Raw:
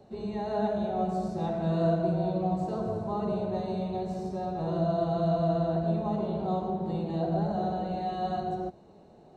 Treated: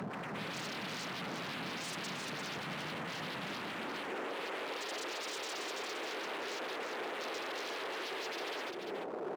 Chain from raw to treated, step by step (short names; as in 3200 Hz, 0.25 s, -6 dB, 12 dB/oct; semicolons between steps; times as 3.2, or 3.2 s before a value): LPF 1300 Hz; low shelf 150 Hz +11.5 dB; upward compressor, threshold -25 dBFS; wavefolder -38 dBFS; high-pass sweep 170 Hz -> 390 Hz, 3.55–4.16; echo 0.347 s -5.5 dB